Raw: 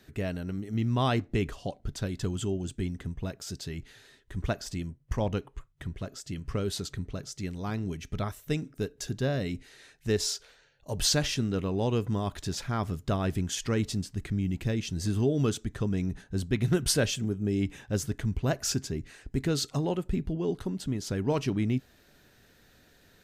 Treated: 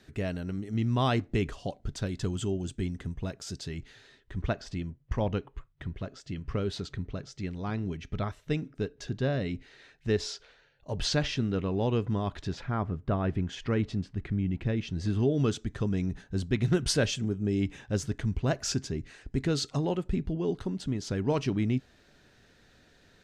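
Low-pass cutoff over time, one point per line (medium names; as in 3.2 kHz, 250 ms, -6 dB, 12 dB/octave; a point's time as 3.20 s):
3.54 s 8.7 kHz
4.52 s 4 kHz
12.43 s 4 kHz
12.87 s 1.5 kHz
13.55 s 2.7 kHz
14.66 s 2.7 kHz
15.70 s 6.8 kHz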